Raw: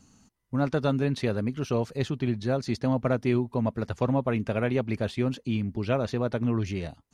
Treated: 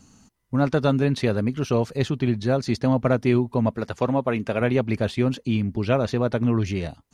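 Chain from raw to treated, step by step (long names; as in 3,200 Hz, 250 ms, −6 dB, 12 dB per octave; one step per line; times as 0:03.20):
0:03.75–0:04.61: low-shelf EQ 150 Hz −10 dB
level +5 dB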